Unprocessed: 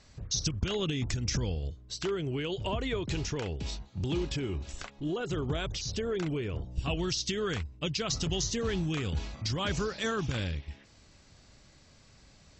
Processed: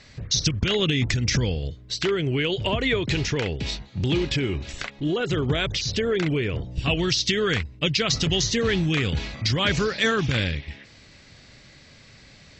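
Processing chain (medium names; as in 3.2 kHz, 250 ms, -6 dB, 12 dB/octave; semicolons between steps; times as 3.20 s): graphic EQ 125/250/500/2000/4000 Hz +6/+4/+5/+11/+7 dB; trim +2.5 dB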